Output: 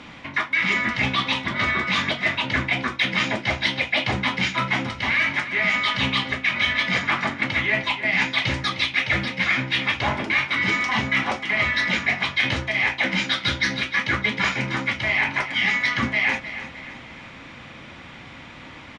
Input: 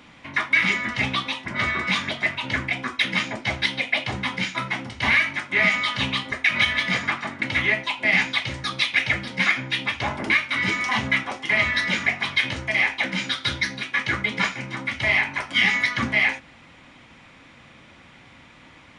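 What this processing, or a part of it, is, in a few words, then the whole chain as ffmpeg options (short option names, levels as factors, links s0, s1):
compression on the reversed sound: -af "areverse,acompressor=threshold=0.0447:ratio=5,areverse,lowpass=6300,aecho=1:1:307|614|921|1228:0.237|0.107|0.048|0.0216,volume=2.37"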